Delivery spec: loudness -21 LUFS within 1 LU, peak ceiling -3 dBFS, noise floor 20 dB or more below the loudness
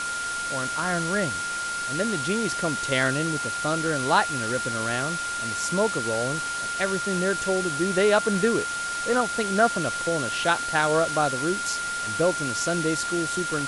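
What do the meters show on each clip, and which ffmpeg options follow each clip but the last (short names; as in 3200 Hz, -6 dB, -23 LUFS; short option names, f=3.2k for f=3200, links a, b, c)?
steady tone 1400 Hz; tone level -28 dBFS; noise floor -30 dBFS; noise floor target -45 dBFS; loudness -24.5 LUFS; peak -7.5 dBFS; loudness target -21.0 LUFS
-> -af "bandreject=f=1.4k:w=30"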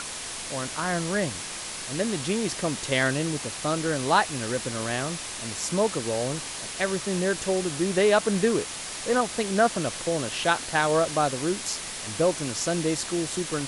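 steady tone none; noise floor -36 dBFS; noise floor target -47 dBFS
-> -af "afftdn=nr=11:nf=-36"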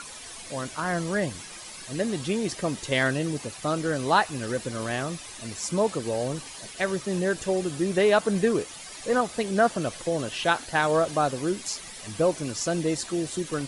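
noise floor -42 dBFS; noise floor target -47 dBFS
-> -af "afftdn=nr=6:nf=-42"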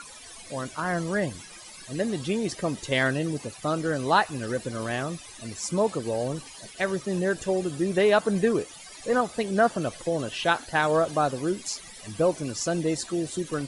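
noise floor -45 dBFS; noise floor target -47 dBFS
-> -af "afftdn=nr=6:nf=-45"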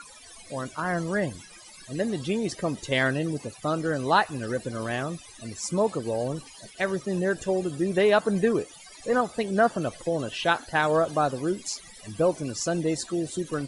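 noise floor -48 dBFS; loudness -27.0 LUFS; peak -7.5 dBFS; loudness target -21.0 LUFS
-> -af "volume=6dB,alimiter=limit=-3dB:level=0:latency=1"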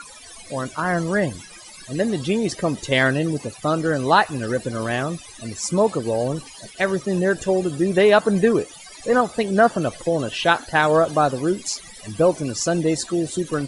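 loudness -21.0 LUFS; peak -3.0 dBFS; noise floor -42 dBFS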